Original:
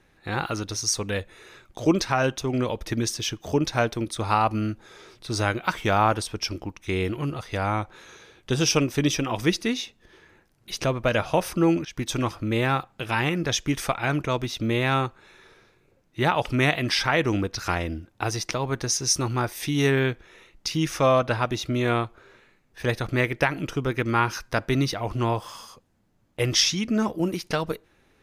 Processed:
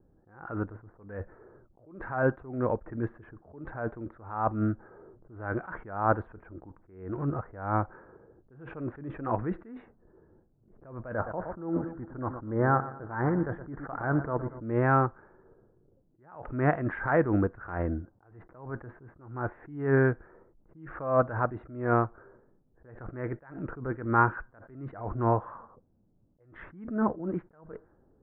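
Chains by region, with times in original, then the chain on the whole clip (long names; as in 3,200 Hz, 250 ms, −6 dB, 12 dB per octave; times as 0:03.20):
0:11.14–0:14.63: mu-law and A-law mismatch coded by A + Savitzky-Golay smoothing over 41 samples + repeating echo 118 ms, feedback 45%, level −15 dB
whole clip: elliptic low-pass filter 1,600 Hz, stop band 70 dB; low-pass that shuts in the quiet parts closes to 450 Hz, open at −21 dBFS; level that may rise only so fast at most 100 dB per second; level +1 dB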